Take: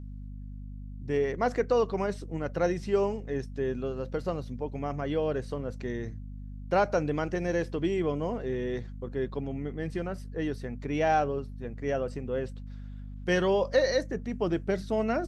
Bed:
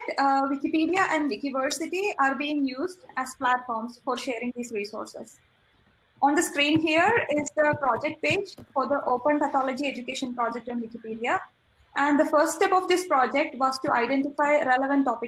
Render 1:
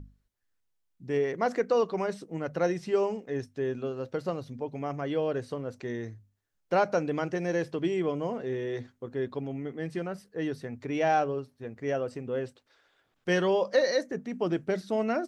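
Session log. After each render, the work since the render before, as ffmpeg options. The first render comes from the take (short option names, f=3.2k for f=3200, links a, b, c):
-af "bandreject=f=50:t=h:w=6,bandreject=f=100:t=h:w=6,bandreject=f=150:t=h:w=6,bandreject=f=200:t=h:w=6,bandreject=f=250:t=h:w=6"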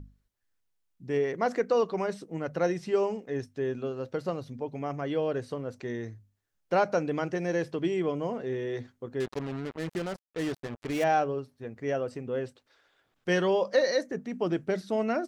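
-filter_complex "[0:a]asettb=1/sr,asplit=3[a][b][c];[a]atrim=end=9.204[d];[b]atrim=start=9.2:end=11.04,asetpts=PTS-STARTPTS,afade=t=in:d=0.004:c=qsin,afade=t=out:st=1.836:d=0.004:c=qsin,acrusher=bits=5:mix=0:aa=0.5[e];[c]atrim=start=11.036[f];[d][e]acrossfade=d=0.004:c1=hsin:c2=qsin[g];[g][f]acrossfade=d=0.004:c1=qsin:c2=hsin"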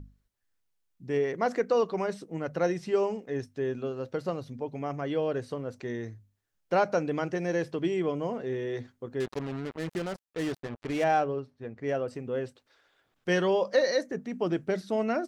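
-filter_complex "[0:a]asettb=1/sr,asplit=3[a][b][c];[a]atrim=end=10.584[d];[b]atrim=start=10.58:end=12.08,asetpts=PTS-STARTPTS,afade=t=in:d=0.004:c=qsin,afade=t=out:st=1.496:d=0.004:c=qsin,adynamicsmooth=sensitivity=8:basefreq=5.4k[e];[c]atrim=start=12.076[f];[d][e]acrossfade=d=0.004:c1=hsin:c2=qsin[g];[g][f]acrossfade=d=0.004:c1=qsin:c2=hsin"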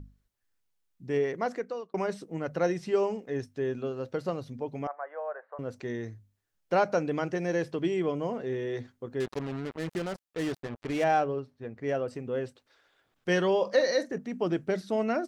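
-filter_complex "[0:a]asettb=1/sr,asplit=3[a][b][c];[a]atrim=end=4.874[d];[b]atrim=start=4.87:end=5.59,asetpts=PTS-STARTPTS,afade=t=in:d=0.004:c=qsin,afade=t=out:st=0.716:d=0.004:c=qsin,asuperpass=centerf=1000:order=8:qfactor=0.87[e];[c]atrim=start=5.586[f];[d][e]acrossfade=d=0.004:c1=hsin:c2=qsin[g];[g][f]acrossfade=d=0.004:c1=qsin:c2=hsin,asettb=1/sr,asplit=3[h][i][j];[h]atrim=end=13.554[k];[i]atrim=start=13.55:end=14.18,asetpts=PTS-STARTPTS,afade=t=in:d=0.004:c=qsin,afade=t=out:st=0.626:d=0.004:c=qsin,asplit=2[l][m];[m]adelay=45,volume=-13dB[n];[l][n]amix=inputs=2:normalize=0,atrim=end_sample=27783[o];[j]atrim=start=14.176[p];[k][o]acrossfade=d=0.004:c1=hsin:c2=qsin[q];[q][p]acrossfade=d=0.004:c1=qsin:c2=hsin,asplit=2[r][s];[r]atrim=end=1.94,asetpts=PTS-STARTPTS,afade=t=out:st=1.25:d=0.69[t];[s]atrim=start=1.94,asetpts=PTS-STARTPTS,afade=t=in:d=0.004:c=hsin[u];[t][u]concat=n=2:v=0:a=1"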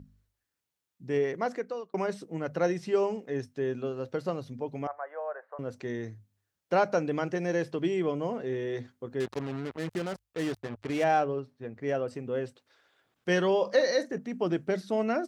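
-af "highpass=59,bandreject=f=50:t=h:w=6,bandreject=f=100:t=h:w=6"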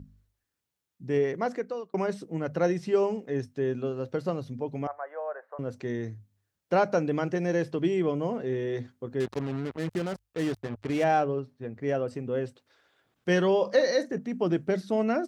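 -af "lowshelf=f=340:g=5"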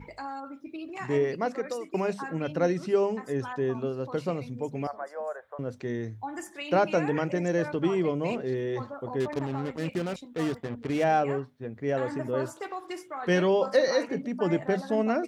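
-filter_complex "[1:a]volume=-15dB[a];[0:a][a]amix=inputs=2:normalize=0"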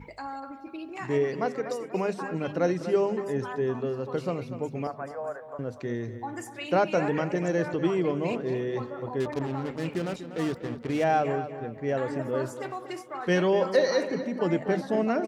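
-filter_complex "[0:a]asplit=2[a][b];[b]adelay=243,lowpass=f=3.4k:p=1,volume=-11dB,asplit=2[c][d];[d]adelay=243,lowpass=f=3.4k:p=1,volume=0.42,asplit=2[e][f];[f]adelay=243,lowpass=f=3.4k:p=1,volume=0.42,asplit=2[g][h];[h]adelay=243,lowpass=f=3.4k:p=1,volume=0.42[i];[a][c][e][g][i]amix=inputs=5:normalize=0"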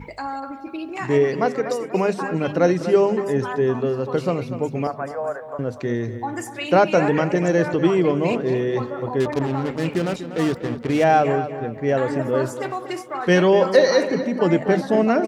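-af "volume=8dB"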